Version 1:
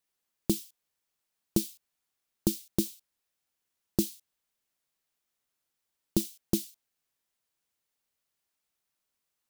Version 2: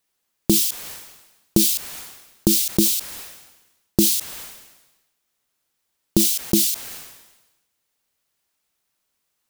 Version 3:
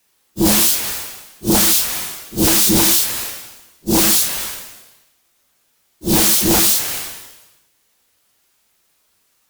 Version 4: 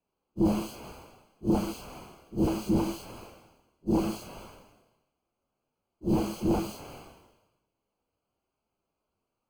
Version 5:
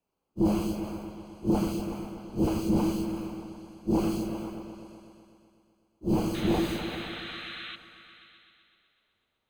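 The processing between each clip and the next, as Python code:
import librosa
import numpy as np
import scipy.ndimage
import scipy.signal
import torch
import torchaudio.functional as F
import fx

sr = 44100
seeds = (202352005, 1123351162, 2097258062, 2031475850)

y1 = fx.sustainer(x, sr, db_per_s=54.0)
y1 = F.gain(torch.from_numpy(y1), 8.5).numpy()
y2 = fx.phase_scramble(y1, sr, seeds[0], window_ms=200)
y2 = fx.fold_sine(y2, sr, drive_db=14, ceiling_db=-4.0)
y2 = F.gain(torch.from_numpy(y2), -5.0).numpy()
y3 = scipy.signal.lfilter(np.full(24, 1.0 / 24), 1.0, y2)
y3 = F.gain(torch.from_numpy(y3), -8.0).numpy()
y4 = fx.spec_paint(y3, sr, seeds[1], shape='noise', start_s=6.34, length_s=1.42, low_hz=1100.0, high_hz=4200.0, level_db=-41.0)
y4 = fx.echo_opening(y4, sr, ms=125, hz=400, octaves=1, feedback_pct=70, wet_db=-6)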